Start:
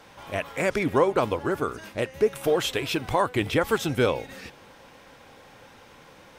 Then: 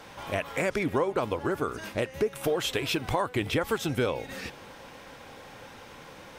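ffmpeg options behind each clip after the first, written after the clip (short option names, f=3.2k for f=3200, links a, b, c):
-af "acompressor=threshold=-31dB:ratio=2.5,volume=3.5dB"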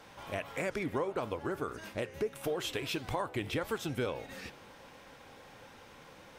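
-af "flanger=delay=9.4:depth=7.2:regen=-89:speed=1.6:shape=sinusoidal,volume=-2.5dB"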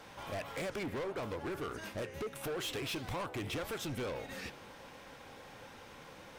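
-af "asoftclip=type=hard:threshold=-37dB,volume=1.5dB"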